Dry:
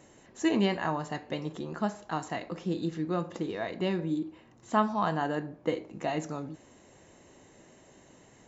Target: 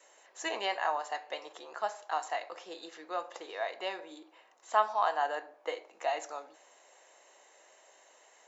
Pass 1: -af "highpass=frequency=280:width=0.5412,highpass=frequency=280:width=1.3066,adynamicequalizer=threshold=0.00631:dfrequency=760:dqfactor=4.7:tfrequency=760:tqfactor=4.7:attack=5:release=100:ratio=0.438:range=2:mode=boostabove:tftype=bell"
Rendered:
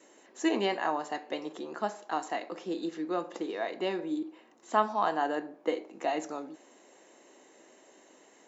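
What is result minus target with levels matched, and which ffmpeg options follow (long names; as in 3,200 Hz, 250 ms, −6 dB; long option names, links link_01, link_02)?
250 Hz band +16.0 dB
-af "highpass=frequency=560:width=0.5412,highpass=frequency=560:width=1.3066,adynamicequalizer=threshold=0.00631:dfrequency=760:dqfactor=4.7:tfrequency=760:tqfactor=4.7:attack=5:release=100:ratio=0.438:range=2:mode=boostabove:tftype=bell"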